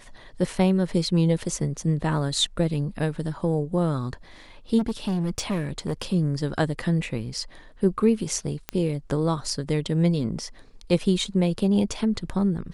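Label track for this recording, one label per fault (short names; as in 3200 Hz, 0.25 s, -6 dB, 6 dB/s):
4.780000	6.020000	clipped -21.5 dBFS
8.690000	8.690000	pop -12 dBFS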